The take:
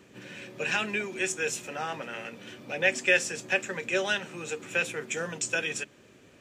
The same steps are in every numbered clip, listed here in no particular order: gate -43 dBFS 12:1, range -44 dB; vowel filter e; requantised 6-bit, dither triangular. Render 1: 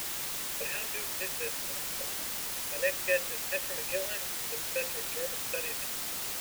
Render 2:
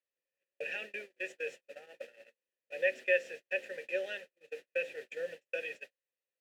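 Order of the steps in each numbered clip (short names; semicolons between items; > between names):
vowel filter > gate > requantised; requantised > vowel filter > gate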